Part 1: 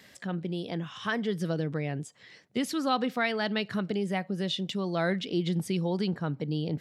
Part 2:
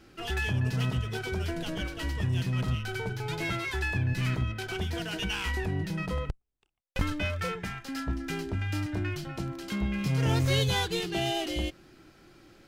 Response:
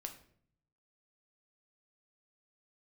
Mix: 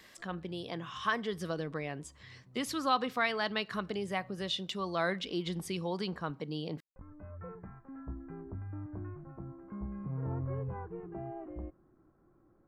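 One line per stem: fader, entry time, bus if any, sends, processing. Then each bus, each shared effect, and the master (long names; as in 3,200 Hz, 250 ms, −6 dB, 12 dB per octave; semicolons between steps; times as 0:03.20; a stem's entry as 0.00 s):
−3.0 dB, 0.00 s, send −14 dB, low-shelf EQ 250 Hz −11 dB
−10.0 dB, 0.00 s, no send, Gaussian smoothing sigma 7.3 samples; automatic ducking −19 dB, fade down 0.35 s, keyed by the first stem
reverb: on, RT60 0.60 s, pre-delay 7 ms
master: parametric band 1,100 Hz +9 dB 0.28 octaves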